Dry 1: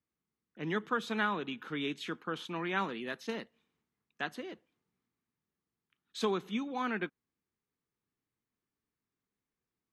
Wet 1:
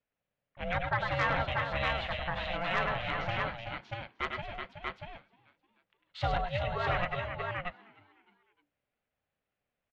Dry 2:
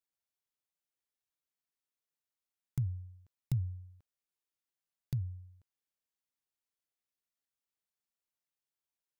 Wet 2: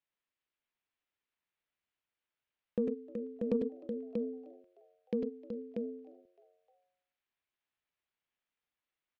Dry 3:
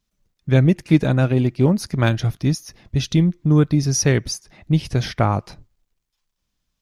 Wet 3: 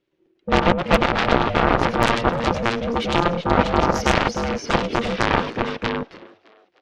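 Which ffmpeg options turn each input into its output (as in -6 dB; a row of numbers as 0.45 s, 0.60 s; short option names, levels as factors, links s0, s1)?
-filter_complex "[0:a]lowpass=f=2600:t=q:w=1.6,asplit=2[s0][s1];[s1]aecho=0:1:97|102|105|375|637:0.266|0.447|0.237|0.422|0.631[s2];[s0][s2]amix=inputs=2:normalize=0,aeval=exprs='val(0)*sin(2*PI*350*n/s)':c=same,aeval=exprs='0.841*(cos(1*acos(clip(val(0)/0.841,-1,1)))-cos(1*PI/2))+0.211*(cos(7*acos(clip(val(0)/0.841,-1,1)))-cos(7*PI/2))':c=same,alimiter=limit=0.376:level=0:latency=1:release=23,asplit=2[s3][s4];[s4]asplit=3[s5][s6][s7];[s5]adelay=306,afreqshift=96,volume=0.0708[s8];[s6]adelay=612,afreqshift=192,volume=0.0339[s9];[s7]adelay=918,afreqshift=288,volume=0.0162[s10];[s8][s9][s10]amix=inputs=3:normalize=0[s11];[s3][s11]amix=inputs=2:normalize=0,volume=2"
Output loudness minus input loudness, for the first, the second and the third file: +2.5 LU, +1.0 LU, -1.0 LU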